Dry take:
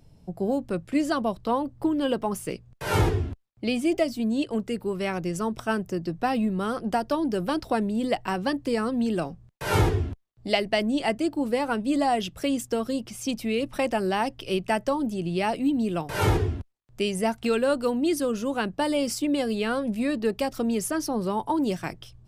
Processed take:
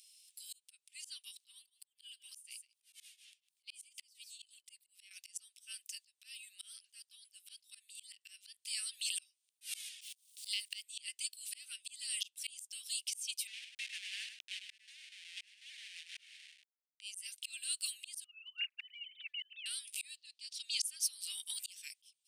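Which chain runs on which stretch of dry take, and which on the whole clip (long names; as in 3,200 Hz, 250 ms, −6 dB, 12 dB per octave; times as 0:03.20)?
0:01.52–0:05.11: single-tap delay 154 ms −16 dB + volume swells 217 ms + shaped tremolo triangle 4.1 Hz, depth 95%
0:10.01–0:10.83: one scale factor per block 7 bits + parametric band 8,200 Hz +2.5 dB 2.2 octaves + multiband upward and downward compressor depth 100%
0:13.47–0:17.01: hold until the input has moved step −23.5 dBFS + four-pole ladder band-pass 2,000 Hz, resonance 55% + single-tap delay 102 ms −8.5 dB
0:18.24–0:19.66: three sine waves on the formant tracks + downward compressor 16 to 1, threshold −25 dBFS + comb filter 4.6 ms, depth 51%
0:20.17–0:20.84: low-pass filter 7,500 Hz + parametric band 4,300 Hz +9 dB 0.78 octaves
whole clip: Butterworth high-pass 2,700 Hz 36 dB per octave; parametric band 9,000 Hz +11.5 dB 0.27 octaves; volume swells 698 ms; level +9 dB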